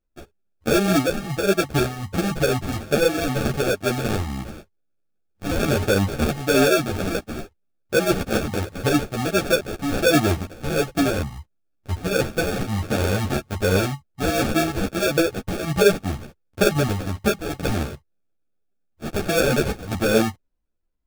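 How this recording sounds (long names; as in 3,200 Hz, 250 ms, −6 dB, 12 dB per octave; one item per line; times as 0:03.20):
phaser sweep stages 2, 1.4 Hz, lowest notch 440–1,600 Hz
aliases and images of a low sample rate 1,000 Hz, jitter 0%
a shimmering, thickened sound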